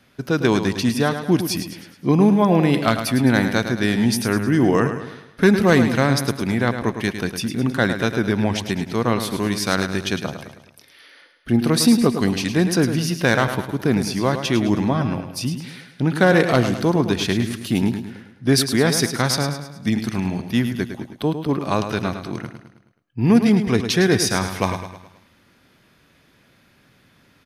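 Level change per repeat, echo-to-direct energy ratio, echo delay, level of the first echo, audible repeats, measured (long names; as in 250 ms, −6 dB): −6.5 dB, −8.0 dB, 106 ms, −9.0 dB, 4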